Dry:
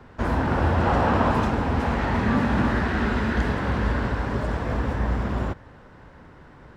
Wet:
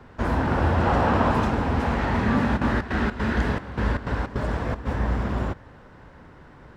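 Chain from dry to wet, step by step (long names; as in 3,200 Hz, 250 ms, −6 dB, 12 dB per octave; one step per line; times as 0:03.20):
0:02.56–0:04.85: gate pattern "x..xx.xx.xxx" 155 BPM −12 dB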